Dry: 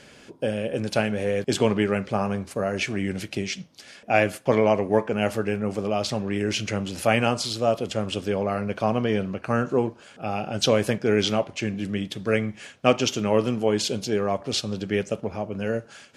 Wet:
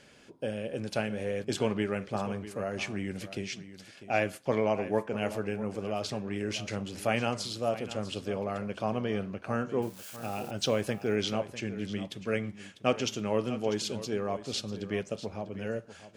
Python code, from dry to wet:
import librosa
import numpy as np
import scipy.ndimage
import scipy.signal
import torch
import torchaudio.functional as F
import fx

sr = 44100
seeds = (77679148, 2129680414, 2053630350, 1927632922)

y = fx.crossing_spikes(x, sr, level_db=-29.5, at=(9.82, 10.51))
y = y + 10.0 ** (-14.0 / 20.0) * np.pad(y, (int(647 * sr / 1000.0), 0))[:len(y)]
y = y * librosa.db_to_amplitude(-8.0)